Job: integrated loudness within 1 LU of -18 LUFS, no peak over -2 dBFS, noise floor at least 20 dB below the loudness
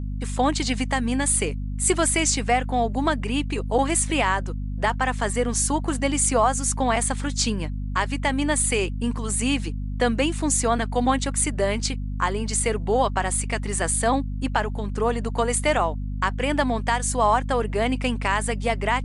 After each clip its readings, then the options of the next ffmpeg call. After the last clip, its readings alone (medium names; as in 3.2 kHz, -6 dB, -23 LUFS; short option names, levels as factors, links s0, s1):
hum 50 Hz; highest harmonic 250 Hz; hum level -26 dBFS; loudness -23.5 LUFS; peak level -8.0 dBFS; loudness target -18.0 LUFS
-> -af "bandreject=f=50:t=h:w=4,bandreject=f=100:t=h:w=4,bandreject=f=150:t=h:w=4,bandreject=f=200:t=h:w=4,bandreject=f=250:t=h:w=4"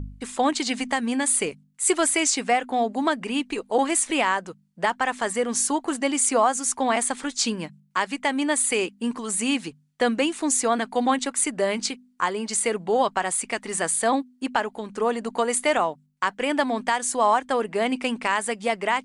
hum not found; loudness -24.0 LUFS; peak level -9.0 dBFS; loudness target -18.0 LUFS
-> -af "volume=2"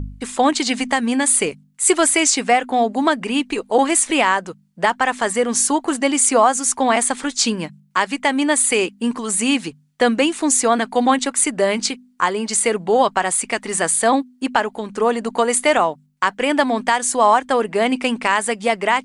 loudness -18.0 LUFS; peak level -3.0 dBFS; noise floor -53 dBFS